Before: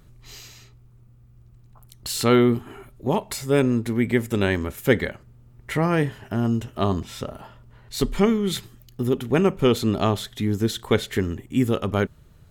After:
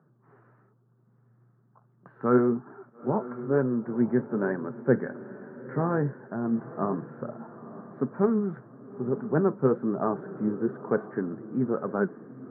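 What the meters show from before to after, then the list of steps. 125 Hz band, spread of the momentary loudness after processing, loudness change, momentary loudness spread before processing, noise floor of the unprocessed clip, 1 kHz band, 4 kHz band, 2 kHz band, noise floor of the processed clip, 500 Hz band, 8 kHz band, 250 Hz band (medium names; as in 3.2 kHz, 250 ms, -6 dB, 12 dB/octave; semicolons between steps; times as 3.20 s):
-8.0 dB, 14 LU, -5.0 dB, 12 LU, -52 dBFS, -4.5 dB, under -40 dB, -9.5 dB, -64 dBFS, -4.0 dB, under -40 dB, -4.5 dB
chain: Chebyshev band-pass 130–1600 Hz, order 5; flange 1.1 Hz, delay 1.1 ms, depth 8.5 ms, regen +61%; on a send: echo that smears into a reverb 926 ms, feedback 40%, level -14.5 dB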